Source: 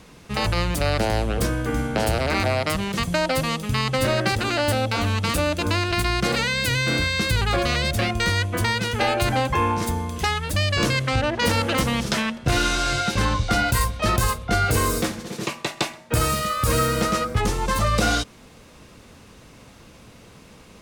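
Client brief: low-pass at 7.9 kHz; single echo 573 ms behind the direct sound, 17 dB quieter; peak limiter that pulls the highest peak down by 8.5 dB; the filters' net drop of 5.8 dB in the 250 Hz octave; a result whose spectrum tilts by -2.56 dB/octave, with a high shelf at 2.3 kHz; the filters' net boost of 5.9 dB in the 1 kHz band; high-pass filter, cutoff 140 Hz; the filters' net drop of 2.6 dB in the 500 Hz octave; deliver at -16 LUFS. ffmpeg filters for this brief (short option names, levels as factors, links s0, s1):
-af "highpass=140,lowpass=7900,equalizer=f=250:t=o:g=-6,equalizer=f=500:t=o:g=-5,equalizer=f=1000:t=o:g=8,highshelf=f=2300:g=5,alimiter=limit=0.211:level=0:latency=1,aecho=1:1:573:0.141,volume=2.24"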